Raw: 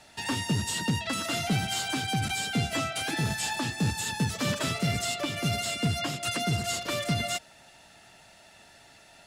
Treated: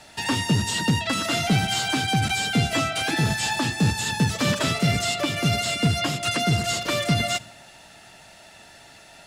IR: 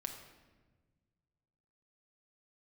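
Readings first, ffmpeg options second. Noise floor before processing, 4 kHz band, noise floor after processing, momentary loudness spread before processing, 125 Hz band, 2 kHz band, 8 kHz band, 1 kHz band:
−55 dBFS, +6.0 dB, −49 dBFS, 2 LU, +6.5 dB, +6.5 dB, +4.0 dB, +6.5 dB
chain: -filter_complex "[0:a]asplit=2[link_01][link_02];[1:a]atrim=start_sample=2205,afade=type=out:start_time=0.36:duration=0.01,atrim=end_sample=16317,asetrate=36603,aresample=44100[link_03];[link_02][link_03]afir=irnorm=-1:irlink=0,volume=-13.5dB[link_04];[link_01][link_04]amix=inputs=2:normalize=0,acrossover=split=7300[link_05][link_06];[link_06]acompressor=threshold=-42dB:ratio=4:attack=1:release=60[link_07];[link_05][link_07]amix=inputs=2:normalize=0,volume=5dB"

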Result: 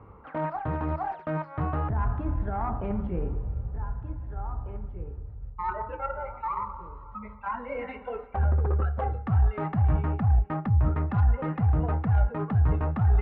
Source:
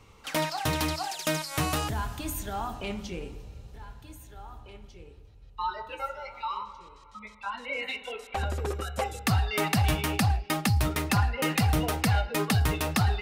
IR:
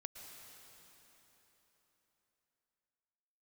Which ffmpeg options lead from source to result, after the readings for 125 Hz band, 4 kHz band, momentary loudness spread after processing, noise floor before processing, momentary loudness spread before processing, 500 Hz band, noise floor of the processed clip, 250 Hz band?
+4.0 dB, below −25 dB, 13 LU, −52 dBFS, 21 LU, −0.5 dB, −46 dBFS, −1.0 dB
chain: -af "lowpass=frequency=1400:width=0.5412,lowpass=frequency=1400:width=1.3066,aeval=exprs='0.141*(cos(1*acos(clip(val(0)/0.141,-1,1)))-cos(1*PI/2))+0.00891*(cos(4*acos(clip(val(0)/0.141,-1,1)))-cos(4*PI/2))':channel_layout=same,highpass=42,areverse,acompressor=threshold=-34dB:ratio=6,areverse,asubboost=boost=2.5:cutoff=170,volume=7dB"

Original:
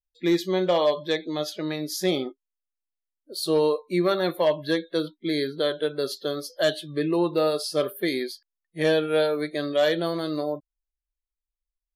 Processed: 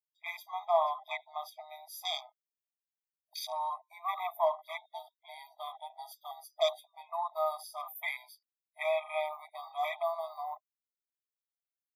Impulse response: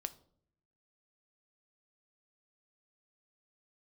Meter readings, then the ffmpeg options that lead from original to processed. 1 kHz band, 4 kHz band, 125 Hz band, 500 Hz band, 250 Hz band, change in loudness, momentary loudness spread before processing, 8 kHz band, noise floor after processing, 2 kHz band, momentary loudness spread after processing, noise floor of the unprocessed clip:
−1.0 dB, −11.0 dB, below −40 dB, −12.5 dB, below −40 dB, −10.5 dB, 8 LU, −13.0 dB, below −85 dBFS, −9.0 dB, 15 LU, below −85 dBFS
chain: -af "aexciter=amount=5.7:drive=5.8:freq=11000,afwtdn=0.0251,afftfilt=real='re*eq(mod(floor(b*sr/1024/640),2),1)':imag='im*eq(mod(floor(b*sr/1024/640),2),1)':win_size=1024:overlap=0.75"

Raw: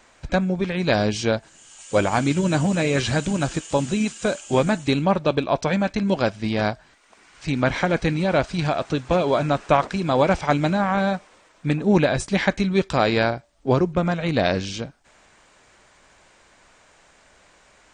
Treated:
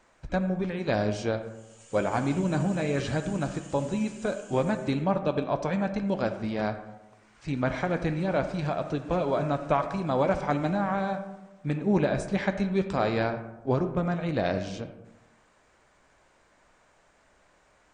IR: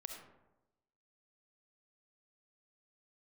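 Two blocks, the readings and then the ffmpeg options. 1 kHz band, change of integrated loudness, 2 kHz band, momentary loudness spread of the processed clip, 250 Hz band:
−6.5 dB, −6.5 dB, −9.0 dB, 7 LU, −6.0 dB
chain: -filter_complex "[0:a]flanger=delay=6:depth=9.4:regen=-75:speed=0.21:shape=sinusoidal,asplit=2[link_01][link_02];[1:a]atrim=start_sample=2205,asetrate=41895,aresample=44100,lowpass=2200[link_03];[link_02][link_03]afir=irnorm=-1:irlink=0,volume=2dB[link_04];[link_01][link_04]amix=inputs=2:normalize=0,volume=-7dB"

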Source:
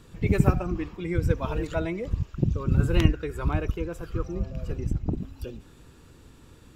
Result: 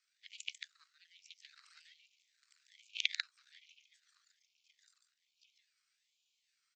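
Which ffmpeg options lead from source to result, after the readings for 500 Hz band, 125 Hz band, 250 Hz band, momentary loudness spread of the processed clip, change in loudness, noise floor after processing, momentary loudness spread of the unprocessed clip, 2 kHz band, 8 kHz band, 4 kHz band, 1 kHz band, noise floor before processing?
below −40 dB, below −40 dB, below −40 dB, 23 LU, −13.0 dB, −83 dBFS, 11 LU, −8.0 dB, −5.5 dB, +0.5 dB, −31.5 dB, −52 dBFS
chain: -af "aeval=exprs='0.668*(cos(1*acos(clip(val(0)/0.668,-1,1)))-cos(1*PI/2))+0.299*(cos(3*acos(clip(val(0)/0.668,-1,1)))-cos(3*PI/2))+0.0531*(cos(5*acos(clip(val(0)/0.668,-1,1)))-cos(5*PI/2))+0.0376*(cos(6*acos(clip(val(0)/0.668,-1,1)))-cos(6*PI/2))+0.0119*(cos(8*acos(clip(val(0)/0.668,-1,1)))-cos(8*PI/2))':channel_layout=same,asuperpass=centerf=4400:order=20:qfactor=0.96,aecho=1:1:144:0.562,aeval=exprs='val(0)*sin(2*PI*790*n/s+790*0.75/1.2*sin(2*PI*1.2*n/s))':channel_layout=same,volume=11.5dB"

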